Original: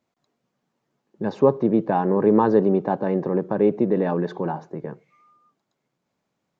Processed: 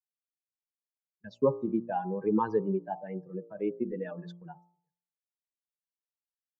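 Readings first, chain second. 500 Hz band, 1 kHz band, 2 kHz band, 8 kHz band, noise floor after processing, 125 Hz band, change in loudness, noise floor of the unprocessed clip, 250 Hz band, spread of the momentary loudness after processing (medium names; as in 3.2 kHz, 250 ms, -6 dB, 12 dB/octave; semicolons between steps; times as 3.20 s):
-11.5 dB, -10.0 dB, -11.0 dB, no reading, under -85 dBFS, -12.5 dB, -10.5 dB, -78 dBFS, -11.5 dB, 17 LU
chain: expander on every frequency bin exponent 3; gate -45 dBFS, range -25 dB; de-hum 58.13 Hz, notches 23; trim -4.5 dB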